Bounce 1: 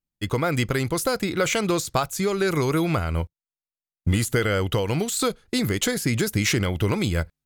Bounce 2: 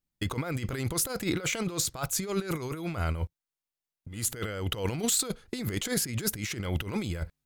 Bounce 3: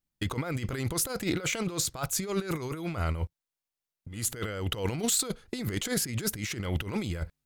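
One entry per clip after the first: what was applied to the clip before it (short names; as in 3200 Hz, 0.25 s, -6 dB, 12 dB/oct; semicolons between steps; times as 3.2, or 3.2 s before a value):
negative-ratio compressor -27 dBFS, ratio -0.5; gain -3 dB
Doppler distortion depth 0.13 ms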